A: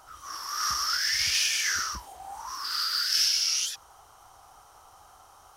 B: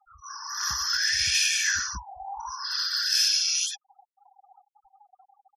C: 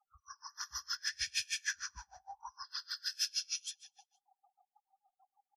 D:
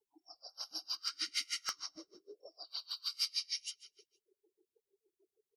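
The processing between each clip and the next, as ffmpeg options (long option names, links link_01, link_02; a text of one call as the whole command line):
ffmpeg -i in.wav -af "afftfilt=real='re*gte(hypot(re,im),0.0126)':imag='im*gte(hypot(re,im),0.0126)':win_size=1024:overlap=0.75,aecho=1:1:1.2:0.75" out.wav
ffmpeg -i in.wav -filter_complex "[0:a]asplit=2[link_01][link_02];[link_02]aecho=0:1:125|250|375|500:0.237|0.0925|0.0361|0.0141[link_03];[link_01][link_03]amix=inputs=2:normalize=0,aeval=exprs='val(0)*pow(10,-32*(0.5-0.5*cos(2*PI*6.5*n/s))/20)':channel_layout=same,volume=-8dB" out.wav
ffmpeg -i in.wav -filter_complex "[0:a]acrossover=split=210|870|2100[link_01][link_02][link_03][link_04];[link_03]acrusher=bits=4:mix=0:aa=0.000001[link_05];[link_01][link_02][link_05][link_04]amix=inputs=4:normalize=0,afreqshift=-380" out.wav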